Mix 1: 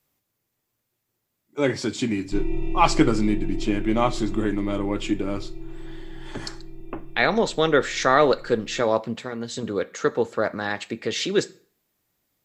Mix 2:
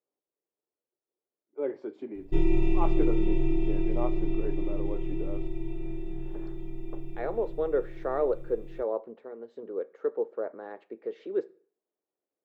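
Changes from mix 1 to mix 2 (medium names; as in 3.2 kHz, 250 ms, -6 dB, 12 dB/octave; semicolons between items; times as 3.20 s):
speech: add ladder band-pass 500 Hz, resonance 45%; background +3.0 dB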